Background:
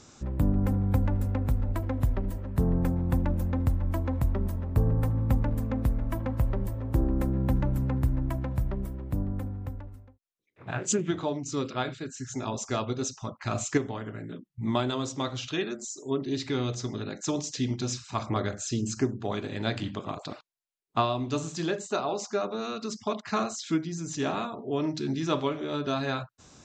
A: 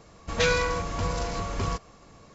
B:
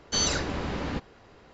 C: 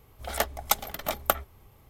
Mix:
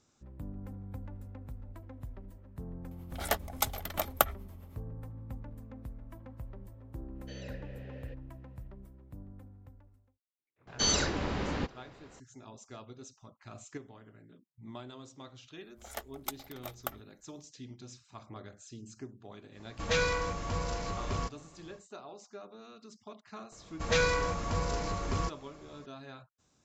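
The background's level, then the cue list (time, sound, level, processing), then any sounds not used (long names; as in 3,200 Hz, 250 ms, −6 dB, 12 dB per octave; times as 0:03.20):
background −18 dB
0:02.91: mix in C −1 dB + amplitude tremolo 9.3 Hz, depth 62%
0:07.15: mix in B −7 dB + formant filter e
0:10.67: mix in B −2 dB
0:15.57: mix in C −13.5 dB + mu-law and A-law mismatch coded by A
0:19.51: mix in A −5.5 dB, fades 0.10 s
0:23.52: mix in A −3.5 dB + parametric band 3,000 Hz −2 dB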